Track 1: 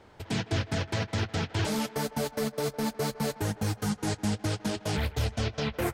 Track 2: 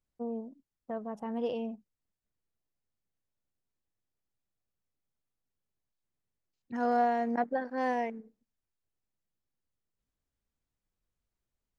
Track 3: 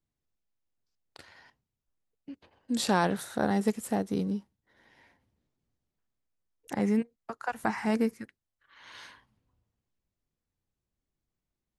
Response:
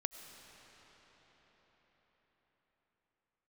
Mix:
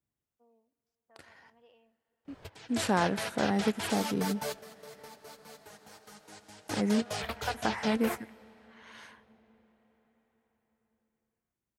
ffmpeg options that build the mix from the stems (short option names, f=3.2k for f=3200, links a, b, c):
-filter_complex "[0:a]acrossover=split=480|3000[a][b][c];[a]acompressor=threshold=-48dB:ratio=3[d];[d][b][c]amix=inputs=3:normalize=0,flanger=delay=1.6:depth=3.4:regen=-48:speed=0.41:shape=sinusoidal,adelay=2250,volume=1dB,asplit=2[e][f];[f]volume=-12.5dB[g];[1:a]bandpass=f=2k:t=q:w=0.95:csg=0,adelay=200,volume=-19.5dB,asplit=2[h][i];[i]volume=-9.5dB[j];[2:a]highpass=63,equalizer=f=4.2k:w=1.7:g=-6.5,volume=-2.5dB,asplit=3[k][l][m];[l]volume=-16.5dB[n];[m]apad=whole_len=360855[o];[e][o]sidechaingate=range=-33dB:threshold=-60dB:ratio=16:detection=peak[p];[3:a]atrim=start_sample=2205[q];[g][j][n]amix=inputs=3:normalize=0[r];[r][q]afir=irnorm=-1:irlink=0[s];[p][h][k][s]amix=inputs=4:normalize=0"